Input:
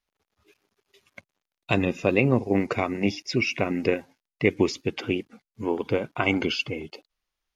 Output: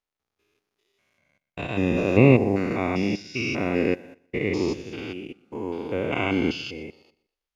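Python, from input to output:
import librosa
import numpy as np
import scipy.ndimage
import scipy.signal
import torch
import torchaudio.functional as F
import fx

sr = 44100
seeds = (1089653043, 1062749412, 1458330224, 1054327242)

y = fx.spec_steps(x, sr, hold_ms=200)
y = fx.echo_feedback(y, sr, ms=121, feedback_pct=35, wet_db=-18)
y = fx.upward_expand(y, sr, threshold_db=-47.0, expansion=1.5)
y = y * librosa.db_to_amplitude(8.0)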